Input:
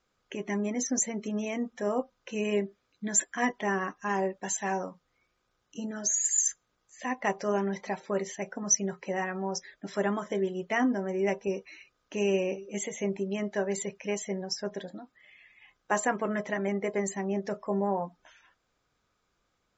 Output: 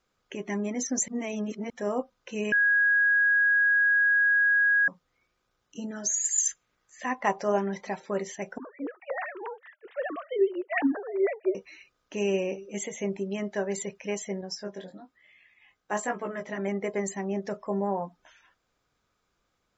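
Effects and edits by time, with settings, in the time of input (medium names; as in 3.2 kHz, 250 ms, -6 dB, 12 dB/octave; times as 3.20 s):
1.08–1.70 s: reverse
2.52–4.88 s: bleep 1.65 kHz -19 dBFS
6.36–7.58 s: peaking EQ 3.5 kHz -> 660 Hz +7 dB
8.58–11.55 s: formants replaced by sine waves
14.41–16.58 s: chorus 1.1 Hz, delay 16 ms, depth 5.1 ms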